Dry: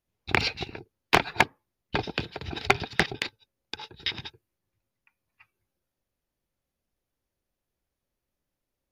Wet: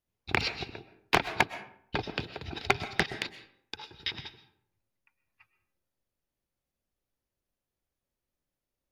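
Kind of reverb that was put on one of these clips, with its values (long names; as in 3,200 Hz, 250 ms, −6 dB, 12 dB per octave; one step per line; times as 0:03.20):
comb and all-pass reverb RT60 0.63 s, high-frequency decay 0.6×, pre-delay 85 ms, DRR 13 dB
level −4 dB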